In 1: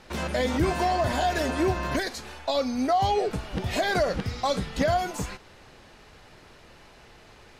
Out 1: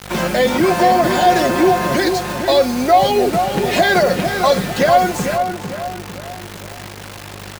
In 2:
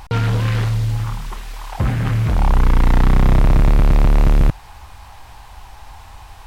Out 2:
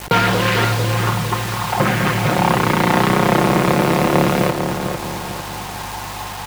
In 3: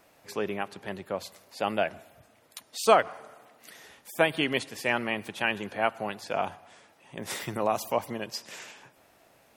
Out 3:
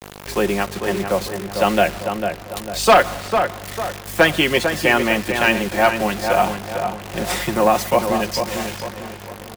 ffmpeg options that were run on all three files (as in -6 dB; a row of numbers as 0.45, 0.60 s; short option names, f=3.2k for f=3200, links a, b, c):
-filter_complex "[0:a]highpass=f=130:w=0.5412,highpass=f=130:w=1.3066,agate=range=-33dB:threshold=-56dB:ratio=3:detection=peak,highshelf=f=5.3k:g=-5.5,aecho=1:1:5.6:0.52,adynamicequalizer=threshold=0.0158:dfrequency=1000:dqfactor=0.8:tfrequency=1000:tqfactor=0.8:attack=5:release=100:ratio=0.375:range=2:mode=cutabove:tftype=bell,acrossover=split=330[a][b];[a]acompressor=threshold=-32dB:ratio=6[c];[c][b]amix=inputs=2:normalize=0,aeval=exprs='val(0)+0.00501*(sin(2*PI*50*n/s)+sin(2*PI*2*50*n/s)/2+sin(2*PI*3*50*n/s)/3+sin(2*PI*4*50*n/s)/4+sin(2*PI*5*50*n/s)/5)':c=same,acrusher=bits=6:mix=0:aa=0.000001,apsyclip=9.5dB,aeval=exprs='1.12*sin(PI/2*1.78*val(0)/1.12)':c=same,asplit=2[d][e];[e]adelay=449,lowpass=f=2k:p=1,volume=-6dB,asplit=2[f][g];[g]adelay=449,lowpass=f=2k:p=1,volume=0.44,asplit=2[h][i];[i]adelay=449,lowpass=f=2k:p=1,volume=0.44,asplit=2[j][k];[k]adelay=449,lowpass=f=2k:p=1,volume=0.44,asplit=2[l][m];[m]adelay=449,lowpass=f=2k:p=1,volume=0.44[n];[f][h][j][l][n]amix=inputs=5:normalize=0[o];[d][o]amix=inputs=2:normalize=0,volume=-6.5dB"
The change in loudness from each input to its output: +11.5, 0.0, +10.5 LU